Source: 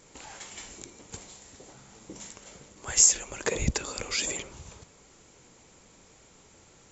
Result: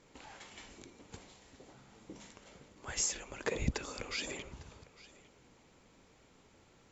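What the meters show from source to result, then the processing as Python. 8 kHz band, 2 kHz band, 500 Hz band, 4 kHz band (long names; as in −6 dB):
can't be measured, −6.0 dB, −6.0 dB, −9.5 dB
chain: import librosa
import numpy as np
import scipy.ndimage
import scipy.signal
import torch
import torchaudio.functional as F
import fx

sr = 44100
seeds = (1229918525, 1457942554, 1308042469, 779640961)

p1 = scipy.signal.sosfilt(scipy.signal.butter(2, 4400.0, 'lowpass', fs=sr, output='sos'), x)
p2 = fx.peak_eq(p1, sr, hz=260.0, db=3.5, octaves=0.31)
p3 = p2 + fx.echo_single(p2, sr, ms=853, db=-20.0, dry=0)
y = p3 * 10.0 ** (-6.0 / 20.0)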